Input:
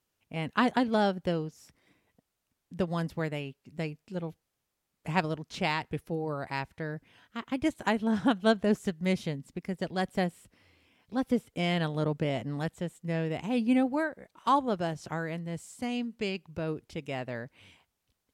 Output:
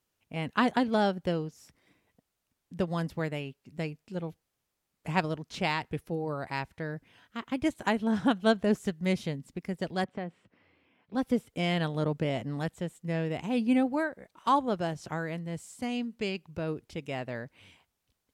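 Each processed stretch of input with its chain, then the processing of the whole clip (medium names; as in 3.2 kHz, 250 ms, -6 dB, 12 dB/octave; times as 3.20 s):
10.04–11.15 s: band-pass 130–2400 Hz + compression 3:1, threshold -33 dBFS
whole clip: none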